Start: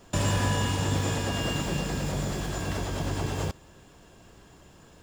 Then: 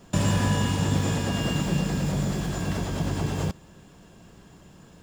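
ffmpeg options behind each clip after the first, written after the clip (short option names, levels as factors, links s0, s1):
-af "equalizer=f=180:t=o:w=0.92:g=8"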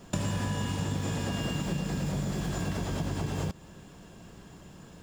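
-af "acompressor=threshold=0.0355:ratio=6,volume=1.12"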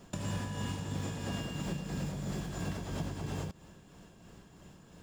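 -af "tremolo=f=3:d=0.39,volume=0.631"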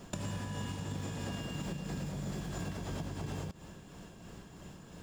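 -af "acompressor=threshold=0.01:ratio=6,volume=1.68"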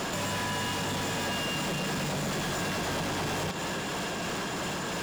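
-filter_complex "[0:a]asplit=2[s0][s1];[s1]highpass=f=720:p=1,volume=89.1,asoftclip=type=tanh:threshold=0.0631[s2];[s0][s2]amix=inputs=2:normalize=0,lowpass=f=4600:p=1,volume=0.501"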